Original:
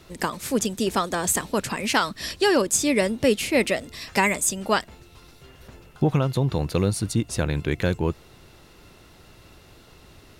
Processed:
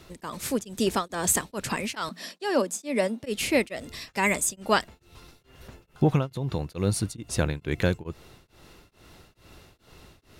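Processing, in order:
0:02.09–0:03.23: Chebyshev high-pass with heavy ripple 170 Hz, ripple 6 dB
0:06.25–0:06.72: downward compressor, threshold −23 dBFS, peak gain reduction 6 dB
tremolo along a rectified sine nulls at 2.3 Hz

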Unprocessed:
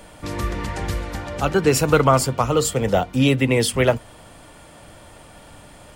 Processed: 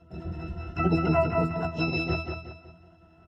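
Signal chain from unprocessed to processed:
time-frequency cells dropped at random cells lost 32%
in parallel at −0.5 dB: output level in coarse steps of 21 dB
on the sum: hum removal 163.4 Hz, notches 8
time stretch by overlap-add 0.55×, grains 37 ms
resonances in every octave E, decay 0.29 s
on a send: repeating echo 185 ms, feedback 37%, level −5 dB
on the sum: pitch-shifted copies added +7 semitones −13 dB, +12 semitones −8 dB
double-tracking delay 16 ms −13.5 dB
level +5 dB

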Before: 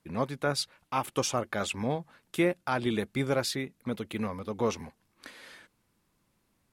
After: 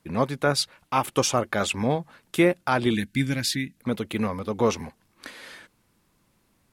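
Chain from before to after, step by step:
gain on a spectral selection 0:02.94–0:03.77, 330–1,500 Hz −17 dB
level +6.5 dB

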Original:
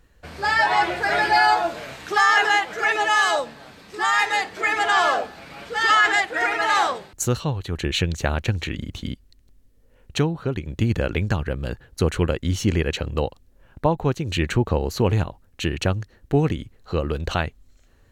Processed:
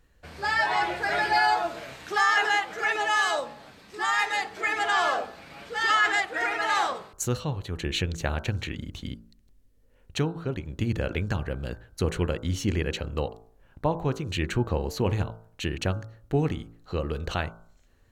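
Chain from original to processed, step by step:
hum removal 55.75 Hz, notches 28
level −5 dB

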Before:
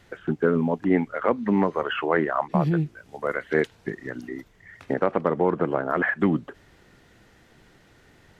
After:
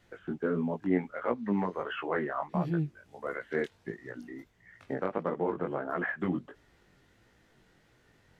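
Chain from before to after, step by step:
pitch vibrato 4.8 Hz 7.4 cents
chorus effect 1.5 Hz, delay 16.5 ms, depth 5.8 ms
level −6 dB

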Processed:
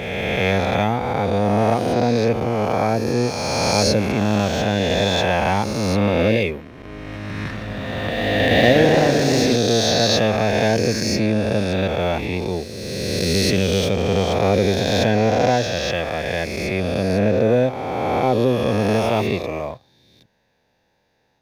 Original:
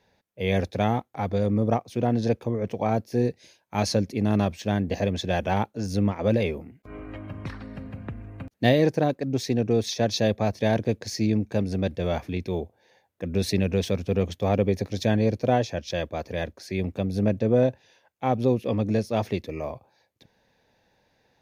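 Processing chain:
peak hold with a rise ahead of every peak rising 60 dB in 2.67 s
dynamic equaliser 2,300 Hz, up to +4 dB, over −42 dBFS, Q 0.84
leveller curve on the samples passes 1
0:07.36–0:09.56: feedback echo with a swinging delay time 126 ms, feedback 77%, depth 128 cents, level −6.5 dB
level −1.5 dB

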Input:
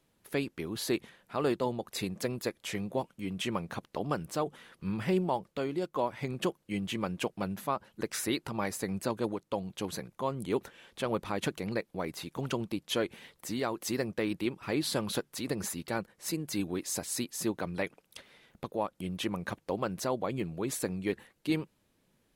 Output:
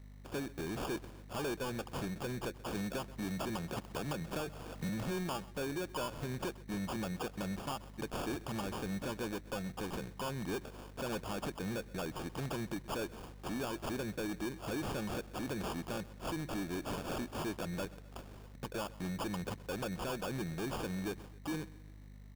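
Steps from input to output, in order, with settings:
downward compressor 2 to 1, threshold −35 dBFS, peak gain reduction 6.5 dB
mains hum 50 Hz, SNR 17 dB
sample-rate reduction 2,000 Hz, jitter 0%
soft clipping −36.5 dBFS, distortion −9 dB
repeating echo 129 ms, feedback 54%, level −20 dB
0:02.75–0:04.89: multiband upward and downward compressor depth 70%
level +3 dB

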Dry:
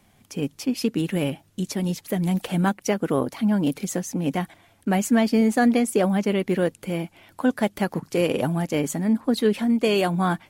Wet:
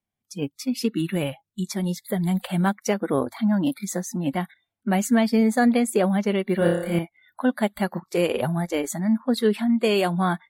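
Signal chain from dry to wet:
0:06.58–0:06.99: flutter between parallel walls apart 5 metres, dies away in 0.82 s
noise reduction from a noise print of the clip's start 29 dB

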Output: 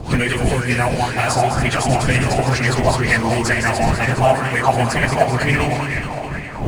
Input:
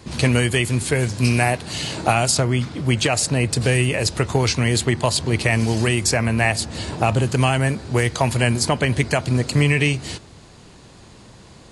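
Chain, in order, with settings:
feedback delay that plays each chunk backwards 183 ms, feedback 79%, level −6 dB
wind on the microphone 160 Hz −23 dBFS
in parallel at −11.5 dB: sample-rate reduction 3,100 Hz, jitter 0%
on the sum: time stretch by phase vocoder 0.57×
on a send: delay with a band-pass on its return 379 ms, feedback 71%, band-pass 920 Hz, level −9 dB
on the sum: auto-filter bell 2.1 Hz 690–2,000 Hz +14 dB
level −1.5 dB

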